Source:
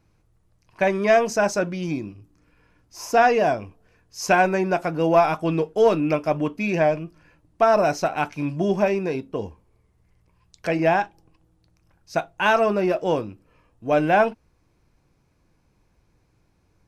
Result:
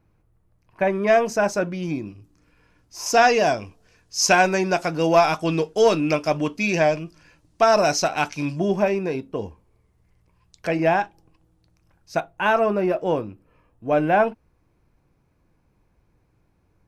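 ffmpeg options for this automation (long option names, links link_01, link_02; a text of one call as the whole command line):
ffmpeg -i in.wav -af "asetnsamples=nb_out_samples=441:pad=0,asendcmd='1.07 equalizer g -2.5;2.06 equalizer g 3.5;3.06 equalizer g 11.5;8.59 equalizer g -0.5;12.2 equalizer g -7.5',equalizer=frequency=5700:width_type=o:width=1.9:gain=-10.5" out.wav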